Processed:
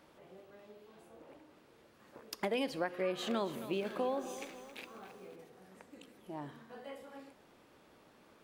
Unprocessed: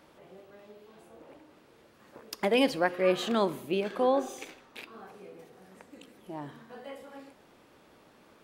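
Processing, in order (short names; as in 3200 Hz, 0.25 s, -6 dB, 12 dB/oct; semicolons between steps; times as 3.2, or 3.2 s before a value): compressor 6:1, threshold -27 dBFS, peak gain reduction 8 dB; 2.99–5.36 lo-fi delay 0.271 s, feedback 55%, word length 9-bit, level -12.5 dB; gain -4 dB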